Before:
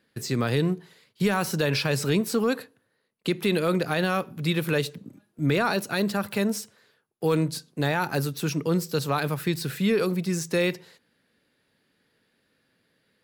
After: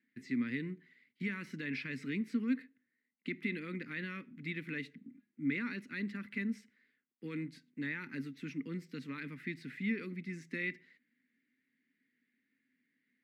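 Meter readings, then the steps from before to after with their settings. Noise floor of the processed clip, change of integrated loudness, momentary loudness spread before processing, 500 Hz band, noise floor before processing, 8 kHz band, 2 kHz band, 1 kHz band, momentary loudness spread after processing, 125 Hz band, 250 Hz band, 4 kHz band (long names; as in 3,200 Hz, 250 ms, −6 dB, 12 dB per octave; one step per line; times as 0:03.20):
−84 dBFS, −13.5 dB, 6 LU, −22.5 dB, −72 dBFS, below −25 dB, −9.5 dB, −24.5 dB, 9 LU, −18.0 dB, −11.0 dB, −21.0 dB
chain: pair of resonant band-passes 720 Hz, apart 3 octaves
level −1.5 dB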